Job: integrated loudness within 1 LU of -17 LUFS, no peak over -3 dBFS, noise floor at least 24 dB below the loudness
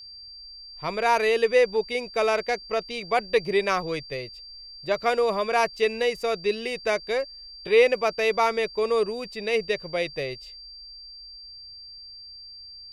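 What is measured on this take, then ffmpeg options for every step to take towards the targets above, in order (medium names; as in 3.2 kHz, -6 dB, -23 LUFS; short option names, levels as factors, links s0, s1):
steady tone 4.7 kHz; tone level -41 dBFS; loudness -24.5 LUFS; peak level -7.5 dBFS; loudness target -17.0 LUFS
-> -af "bandreject=f=4700:w=30"
-af "volume=2.37,alimiter=limit=0.708:level=0:latency=1"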